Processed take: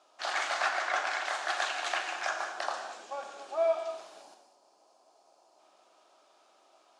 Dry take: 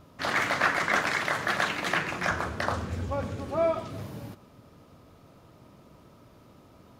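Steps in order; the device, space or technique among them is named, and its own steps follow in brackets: ten-band graphic EQ 125 Hz -8 dB, 250 Hz -8 dB, 500 Hz -3 dB, 1 kHz -4 dB, 8 kHz +3 dB; 4.22–5.59 s: time-frequency box 1.1–4.1 kHz -8 dB; phone speaker on a table (cabinet simulation 390–8600 Hz, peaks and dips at 470 Hz -8 dB, 750 Hz +9 dB, 2 kHz -7 dB); 0.69–1.26 s: treble shelf 5.6 kHz -9.5 dB; gated-style reverb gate 250 ms flat, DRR 5.5 dB; trim -2.5 dB

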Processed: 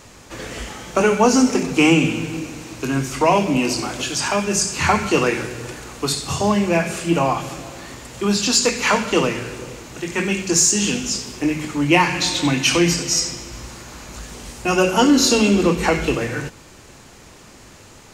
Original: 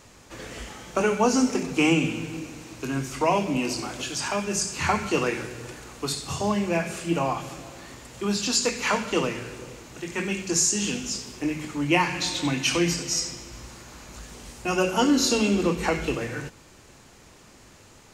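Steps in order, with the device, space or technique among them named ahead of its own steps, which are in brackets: parallel distortion (in parallel at -11 dB: hard clipper -19.5 dBFS, distortion -13 dB); on the sum: trim +5 dB

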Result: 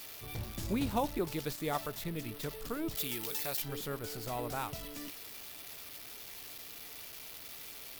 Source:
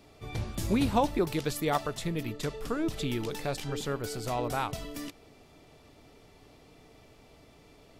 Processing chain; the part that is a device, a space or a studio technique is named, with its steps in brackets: budget class-D amplifier (dead-time distortion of 0.078 ms; zero-crossing glitches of -25 dBFS); 2.95–3.62 s: tilt EQ +2.5 dB/octave; trim -6.5 dB

